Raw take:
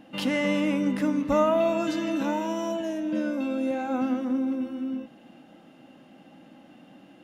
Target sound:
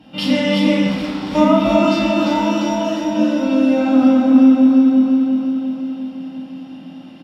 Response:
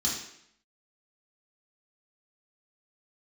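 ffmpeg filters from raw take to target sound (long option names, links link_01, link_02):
-filter_complex "[0:a]aecho=1:1:349|698|1047|1396|1745|2094|2443|2792:0.596|0.34|0.194|0.11|0.0629|0.0358|0.0204|0.0116,asettb=1/sr,asplit=3[link_01][link_02][link_03];[link_01]atrim=end=0.864[link_04];[link_02]atrim=start=0.86:end=1.35,asetpts=PTS-STARTPTS,afade=type=in:duration=0.004:curve=qsin,afade=type=out:start_time=0.486:duration=0.004:curve=qsin,volume=32.5dB,asoftclip=hard,volume=-32.5dB[link_05];[link_03]atrim=start=1.346[link_06];[link_04][link_05]acrossfade=duration=0.004:curve1=hsin:curve2=qsin[link_07];[link_07][link_06]acrossfade=duration=0.004:curve1=qsin:curve2=hsin[link_08];[1:a]atrim=start_sample=2205,asetrate=33957,aresample=44100[link_09];[link_08][link_09]afir=irnorm=-1:irlink=0,volume=-2dB"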